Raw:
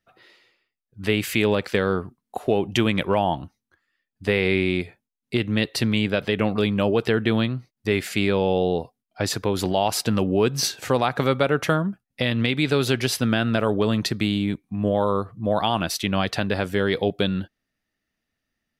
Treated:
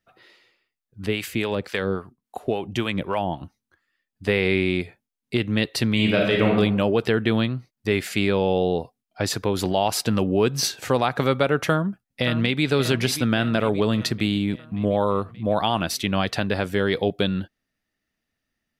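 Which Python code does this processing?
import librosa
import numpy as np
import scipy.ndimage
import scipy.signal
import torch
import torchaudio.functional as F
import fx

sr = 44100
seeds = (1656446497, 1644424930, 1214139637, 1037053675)

y = fx.harmonic_tremolo(x, sr, hz=3.6, depth_pct=70, crossover_hz=610.0, at=(1.06, 3.41))
y = fx.reverb_throw(y, sr, start_s=5.93, length_s=0.61, rt60_s=0.9, drr_db=-1.0)
y = fx.echo_throw(y, sr, start_s=11.66, length_s=0.98, ms=580, feedback_pct=60, wet_db=-11.0)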